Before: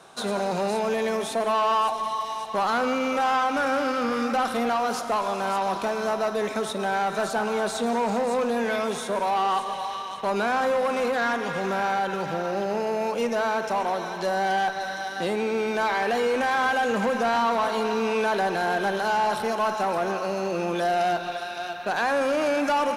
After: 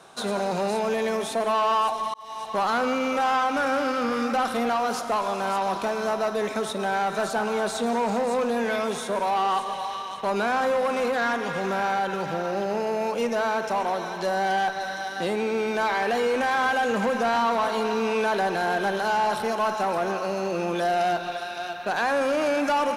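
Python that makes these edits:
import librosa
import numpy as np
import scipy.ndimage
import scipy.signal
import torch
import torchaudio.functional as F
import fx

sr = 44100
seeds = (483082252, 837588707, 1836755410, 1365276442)

y = fx.edit(x, sr, fx.fade_in_span(start_s=2.14, length_s=0.33), tone=tone)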